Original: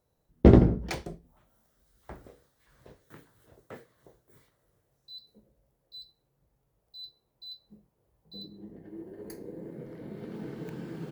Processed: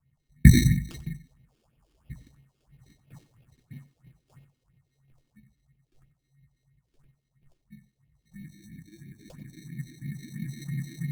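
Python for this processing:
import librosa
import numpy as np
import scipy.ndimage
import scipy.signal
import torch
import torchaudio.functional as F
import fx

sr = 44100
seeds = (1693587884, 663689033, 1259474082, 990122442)

p1 = scipy.signal.sosfilt(scipy.signal.ellip(3, 1.0, 40, [250.0, 6300.0], 'bandstop', fs=sr, output='sos'), x)
p2 = fx.peak_eq(p1, sr, hz=140.0, db=14.5, octaves=0.43)
p3 = fx.sample_hold(p2, sr, seeds[0], rate_hz=2000.0, jitter_pct=0)
p4 = fx.phaser_stages(p3, sr, stages=4, low_hz=120.0, high_hz=1200.0, hz=3.0, feedback_pct=45)
p5 = p4 + fx.echo_single(p4, sr, ms=93, db=-16.5, dry=0)
y = p5 * librosa.db_to_amplitude(1.5)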